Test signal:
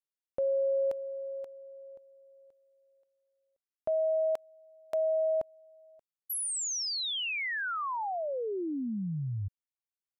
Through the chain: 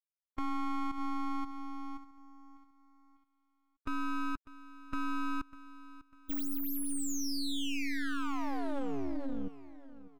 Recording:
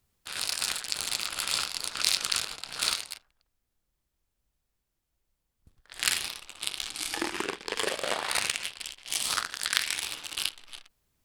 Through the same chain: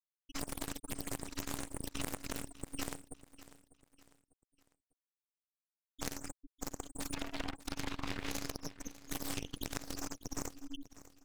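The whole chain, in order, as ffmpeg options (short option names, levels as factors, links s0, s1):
-filter_complex "[0:a]afftfilt=real='re*gte(hypot(re,im),0.0398)':imag='im*gte(hypot(re,im),0.0398)':win_size=1024:overlap=0.75,acrossover=split=210[s0][s1];[s0]acompressor=threshold=0.00708:ratio=4:attack=14:release=136:knee=2.83:detection=peak[s2];[s2][s1]amix=inputs=2:normalize=0,tremolo=f=280:d=0.947,acompressor=threshold=0.00708:ratio=6:attack=0.54:release=267:knee=6:detection=peak,aeval=exprs='abs(val(0))':c=same,asplit=2[s3][s4];[s4]aecho=0:1:598|1196|1794:0.141|0.0537|0.0204[s5];[s3][s5]amix=inputs=2:normalize=0,volume=5.01"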